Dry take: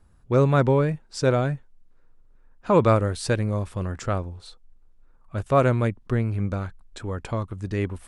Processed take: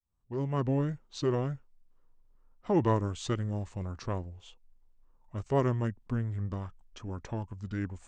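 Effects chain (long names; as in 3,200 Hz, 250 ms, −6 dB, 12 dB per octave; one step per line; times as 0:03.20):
fade in at the beginning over 0.81 s
formants moved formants −4 semitones
level −8 dB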